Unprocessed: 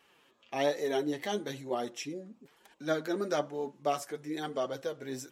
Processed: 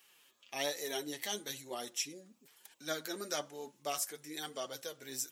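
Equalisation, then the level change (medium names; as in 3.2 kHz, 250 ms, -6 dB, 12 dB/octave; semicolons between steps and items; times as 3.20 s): pre-emphasis filter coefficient 0.9; +8.5 dB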